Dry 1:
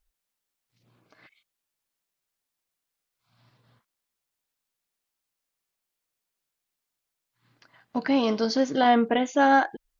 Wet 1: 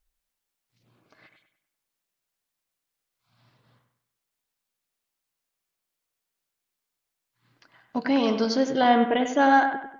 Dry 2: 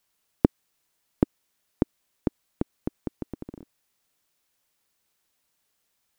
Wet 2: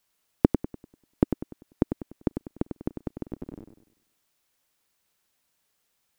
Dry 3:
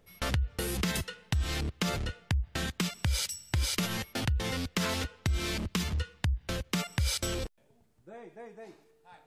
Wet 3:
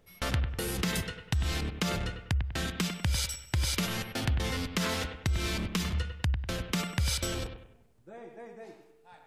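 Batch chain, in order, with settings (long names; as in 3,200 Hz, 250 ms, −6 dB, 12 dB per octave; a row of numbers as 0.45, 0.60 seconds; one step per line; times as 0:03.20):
bucket-brigade delay 98 ms, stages 2,048, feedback 39%, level −8 dB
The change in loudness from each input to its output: +1.0, 0.0, +0.5 LU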